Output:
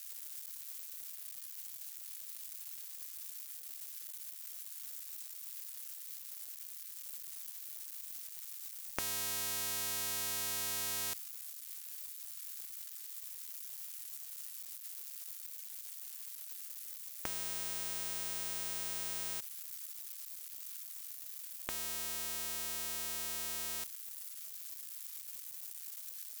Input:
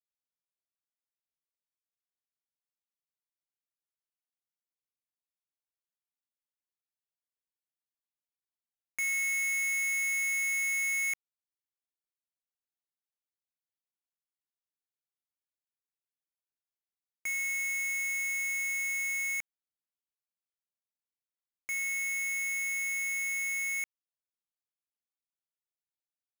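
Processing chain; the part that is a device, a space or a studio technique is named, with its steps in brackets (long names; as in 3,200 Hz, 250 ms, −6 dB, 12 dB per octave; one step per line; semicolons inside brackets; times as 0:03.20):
budget class-D amplifier (gap after every zero crossing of 0.23 ms; spike at every zero crossing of −41.5 dBFS)
level +13.5 dB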